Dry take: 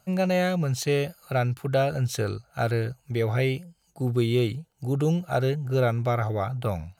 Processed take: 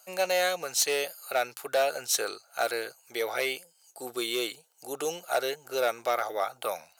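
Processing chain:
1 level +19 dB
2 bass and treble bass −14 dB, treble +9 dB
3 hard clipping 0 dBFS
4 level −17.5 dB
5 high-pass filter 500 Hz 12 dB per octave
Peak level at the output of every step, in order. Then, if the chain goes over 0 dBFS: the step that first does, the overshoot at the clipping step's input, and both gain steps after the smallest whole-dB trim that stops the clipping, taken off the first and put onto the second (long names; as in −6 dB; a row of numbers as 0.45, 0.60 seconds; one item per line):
+7.0, +6.5, 0.0, −17.5, −13.0 dBFS
step 1, 6.5 dB
step 1 +12 dB, step 4 −10.5 dB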